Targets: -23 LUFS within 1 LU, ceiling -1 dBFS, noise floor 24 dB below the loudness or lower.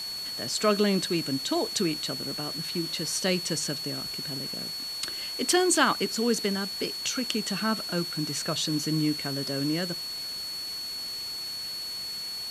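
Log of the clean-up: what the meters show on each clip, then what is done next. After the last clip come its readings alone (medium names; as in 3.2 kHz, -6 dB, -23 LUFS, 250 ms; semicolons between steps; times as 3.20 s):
steady tone 4.4 kHz; tone level -33 dBFS; noise floor -36 dBFS; noise floor target -52 dBFS; loudness -28.0 LUFS; peak level -7.0 dBFS; loudness target -23.0 LUFS
-> band-stop 4.4 kHz, Q 30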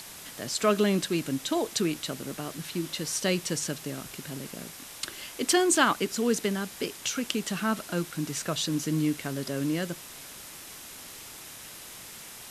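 steady tone not found; noise floor -45 dBFS; noise floor target -53 dBFS
-> noise reduction 8 dB, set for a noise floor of -45 dBFS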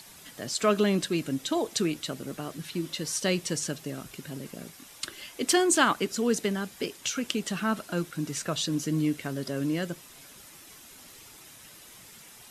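noise floor -51 dBFS; noise floor target -53 dBFS
-> noise reduction 6 dB, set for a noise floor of -51 dBFS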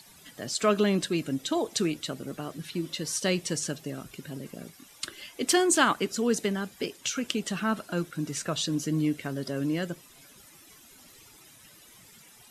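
noise floor -54 dBFS; loudness -29.0 LUFS; peak level -7.5 dBFS; loudness target -23.0 LUFS
-> trim +6 dB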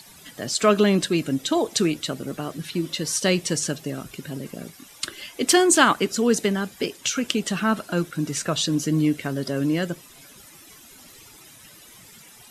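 loudness -23.0 LUFS; peak level -1.5 dBFS; noise floor -48 dBFS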